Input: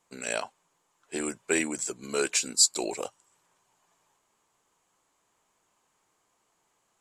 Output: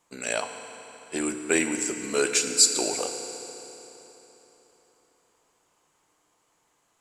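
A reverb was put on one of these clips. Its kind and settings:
feedback delay network reverb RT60 3.7 s, high-frequency decay 0.85×, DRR 6 dB
level +2.5 dB

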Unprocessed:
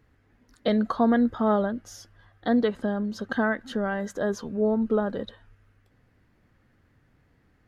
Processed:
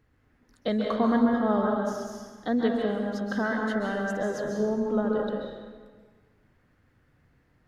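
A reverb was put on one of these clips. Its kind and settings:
dense smooth reverb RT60 1.5 s, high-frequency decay 0.75×, pre-delay 120 ms, DRR −1 dB
level −4 dB

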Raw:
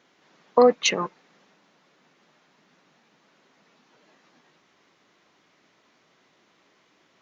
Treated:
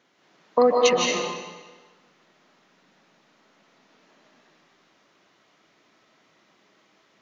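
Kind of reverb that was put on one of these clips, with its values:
comb and all-pass reverb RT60 1.3 s, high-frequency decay 0.95×, pre-delay 110 ms, DRR −1.5 dB
level −2.5 dB

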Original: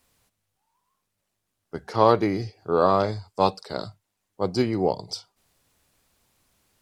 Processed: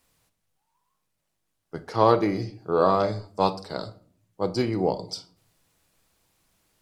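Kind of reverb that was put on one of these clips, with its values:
rectangular room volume 560 cubic metres, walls furnished, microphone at 0.64 metres
level −1.5 dB

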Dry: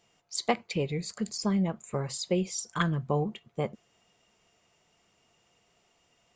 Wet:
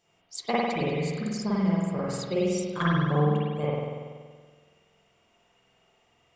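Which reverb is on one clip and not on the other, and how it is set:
spring reverb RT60 1.6 s, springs 47 ms, chirp 60 ms, DRR −7.5 dB
level −4.5 dB

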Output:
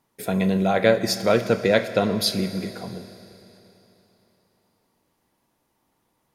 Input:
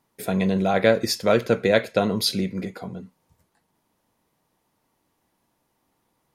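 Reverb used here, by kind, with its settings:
four-comb reverb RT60 3.4 s, combs from 26 ms, DRR 11.5 dB

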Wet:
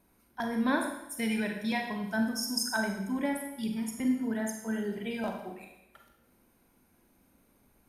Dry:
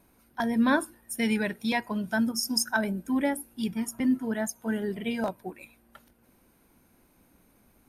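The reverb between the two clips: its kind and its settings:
four-comb reverb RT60 0.84 s, combs from 32 ms, DRR 2.5 dB
level −5.5 dB

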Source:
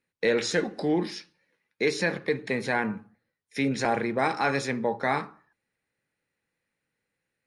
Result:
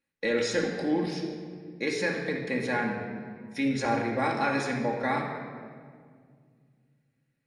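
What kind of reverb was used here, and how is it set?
rectangular room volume 3,400 cubic metres, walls mixed, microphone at 2.3 metres
level −5 dB

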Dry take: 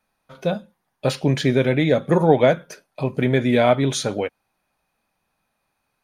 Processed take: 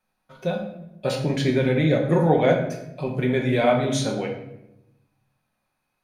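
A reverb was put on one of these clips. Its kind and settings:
rectangular room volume 260 cubic metres, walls mixed, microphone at 1 metre
level −5.5 dB

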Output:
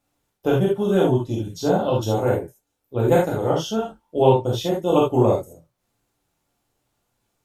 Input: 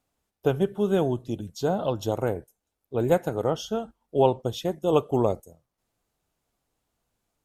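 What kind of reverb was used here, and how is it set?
reverb whose tail is shaped and stops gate 100 ms flat, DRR −4.5 dB

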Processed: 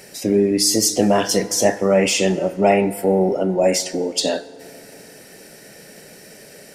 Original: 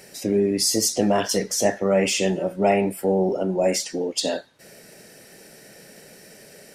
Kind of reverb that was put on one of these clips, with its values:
feedback delay network reverb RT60 3.5 s, high-frequency decay 0.4×, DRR 16 dB
level +4 dB

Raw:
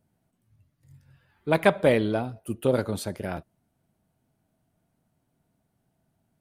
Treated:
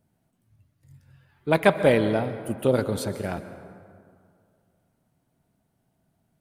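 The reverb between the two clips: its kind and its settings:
dense smooth reverb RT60 2.2 s, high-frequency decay 0.5×, pre-delay 115 ms, DRR 11 dB
level +1.5 dB

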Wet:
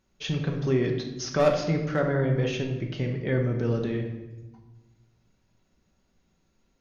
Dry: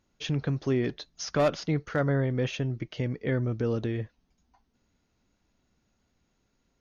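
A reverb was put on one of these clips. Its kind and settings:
rectangular room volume 530 cubic metres, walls mixed, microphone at 1.1 metres

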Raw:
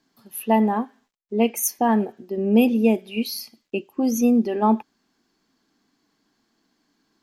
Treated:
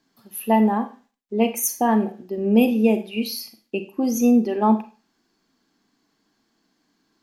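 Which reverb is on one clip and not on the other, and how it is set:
four-comb reverb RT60 0.34 s, combs from 33 ms, DRR 9.5 dB

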